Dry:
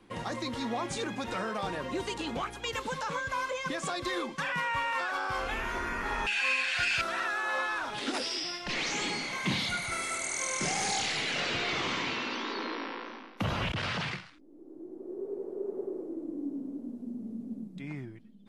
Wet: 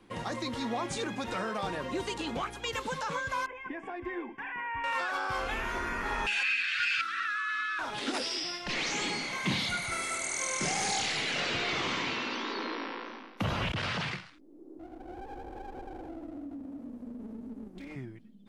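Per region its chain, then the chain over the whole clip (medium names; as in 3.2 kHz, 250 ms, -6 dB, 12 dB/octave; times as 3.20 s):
3.46–4.84 s: distance through air 430 m + static phaser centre 830 Hz, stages 8
6.43–7.79 s: brick-wall FIR band-stop 330–1100 Hz + three-band isolator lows -23 dB, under 370 Hz, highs -12 dB, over 5 kHz
14.79–17.96 s: comb filter that takes the minimum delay 3.7 ms + compression, threshold -38 dBFS
whole clip: none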